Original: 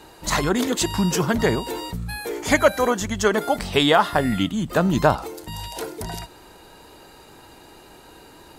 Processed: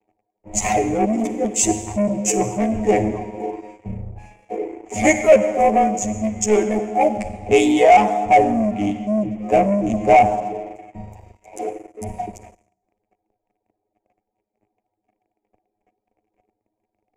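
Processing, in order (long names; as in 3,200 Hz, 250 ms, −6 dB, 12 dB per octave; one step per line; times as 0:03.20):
adaptive Wiener filter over 15 samples
time stretch by overlap-add 2×, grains 38 ms
hollow resonant body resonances 210/730 Hz, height 15 dB, ringing for 65 ms
reverb reduction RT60 1.2 s
noise gate with hold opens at −41 dBFS
convolution reverb RT60 1.9 s, pre-delay 40 ms, DRR 9.5 dB
leveller curve on the samples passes 3
drawn EQ curve 110 Hz 0 dB, 160 Hz −12 dB, 360 Hz +5 dB, 650 Hz +5 dB, 1,500 Hz −15 dB, 2,300 Hz +7 dB, 4,000 Hz −15 dB, 7,000 Hz +8 dB, 13,000 Hz −10 dB
multiband upward and downward expander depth 40%
level −10 dB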